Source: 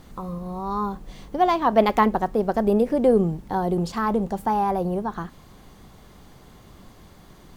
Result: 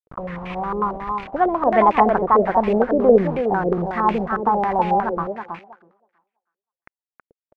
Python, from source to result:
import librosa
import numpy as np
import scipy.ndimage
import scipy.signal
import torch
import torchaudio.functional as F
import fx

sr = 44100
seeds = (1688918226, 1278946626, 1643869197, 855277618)

y = fx.quant_dither(x, sr, seeds[0], bits=6, dither='none')
y = fx.echo_thinned(y, sr, ms=323, feedback_pct=17, hz=240.0, wet_db=-4.0)
y = fx.filter_held_lowpass(y, sr, hz=11.0, low_hz=470.0, high_hz=2400.0)
y = F.gain(torch.from_numpy(y), -1.0).numpy()